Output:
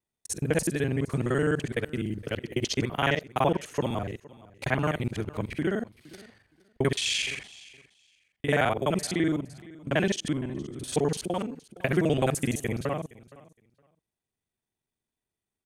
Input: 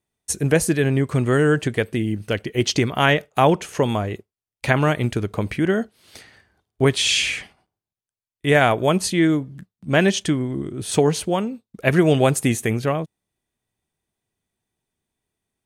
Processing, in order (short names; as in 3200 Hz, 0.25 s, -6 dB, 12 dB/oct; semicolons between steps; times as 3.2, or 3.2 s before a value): local time reversal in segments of 42 ms; feedback echo 0.466 s, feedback 18%, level -21 dB; gain -8 dB